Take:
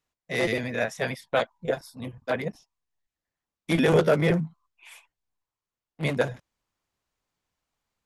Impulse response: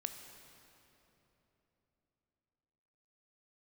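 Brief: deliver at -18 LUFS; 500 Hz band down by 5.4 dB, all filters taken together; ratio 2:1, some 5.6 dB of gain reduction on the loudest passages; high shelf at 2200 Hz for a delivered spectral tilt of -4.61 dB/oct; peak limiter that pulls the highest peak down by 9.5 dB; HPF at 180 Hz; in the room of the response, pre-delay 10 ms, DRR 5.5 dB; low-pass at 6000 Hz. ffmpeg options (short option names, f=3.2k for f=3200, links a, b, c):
-filter_complex "[0:a]highpass=180,lowpass=6k,equalizer=f=500:t=o:g=-6,highshelf=f=2.2k:g=-5.5,acompressor=threshold=-30dB:ratio=2,alimiter=level_in=2.5dB:limit=-24dB:level=0:latency=1,volume=-2.5dB,asplit=2[a][b];[1:a]atrim=start_sample=2205,adelay=10[c];[b][c]afir=irnorm=-1:irlink=0,volume=-4.5dB[d];[a][d]amix=inputs=2:normalize=0,volume=20dB"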